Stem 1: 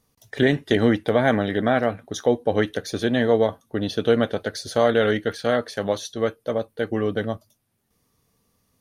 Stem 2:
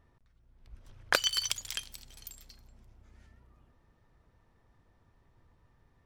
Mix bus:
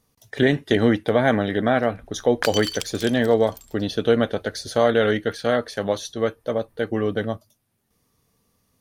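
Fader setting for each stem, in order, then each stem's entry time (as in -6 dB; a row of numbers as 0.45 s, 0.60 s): +0.5 dB, +1.0 dB; 0.00 s, 1.30 s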